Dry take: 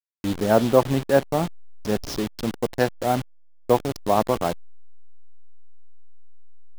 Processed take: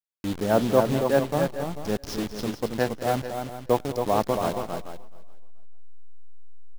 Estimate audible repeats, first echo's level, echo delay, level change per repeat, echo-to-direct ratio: 4, −19.0 dB, 201 ms, repeats not evenly spaced, −4.5 dB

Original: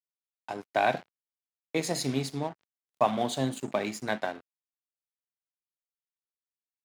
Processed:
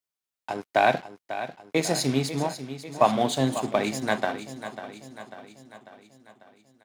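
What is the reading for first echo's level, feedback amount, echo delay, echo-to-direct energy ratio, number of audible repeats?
−12.0 dB, 54%, 545 ms, −10.5 dB, 5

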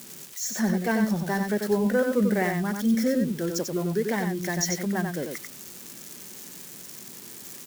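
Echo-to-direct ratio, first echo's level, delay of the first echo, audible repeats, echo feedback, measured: −5.0 dB, −5.0 dB, 93 ms, 1, repeats not evenly spaced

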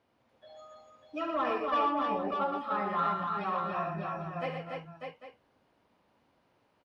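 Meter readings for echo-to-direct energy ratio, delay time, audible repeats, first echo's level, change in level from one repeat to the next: 0.5 dB, 69 ms, 6, −8.0 dB, repeats not evenly spaced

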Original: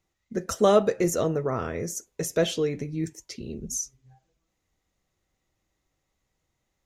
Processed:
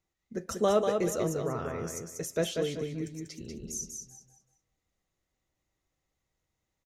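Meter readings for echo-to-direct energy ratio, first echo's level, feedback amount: −4.5 dB, −5.0 dB, 28%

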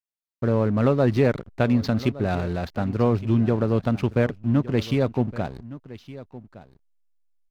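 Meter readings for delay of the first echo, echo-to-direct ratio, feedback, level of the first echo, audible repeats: 1,165 ms, −17.0 dB, repeats not evenly spaced, −17.0 dB, 1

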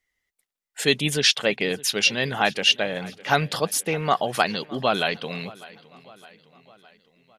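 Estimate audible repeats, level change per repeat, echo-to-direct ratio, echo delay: 3, −5.0 dB, −19.5 dB, 611 ms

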